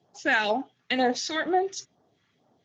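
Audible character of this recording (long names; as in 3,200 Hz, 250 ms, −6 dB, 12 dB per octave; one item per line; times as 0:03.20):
phaser sweep stages 2, 2.1 Hz, lowest notch 570–2,400 Hz
Speex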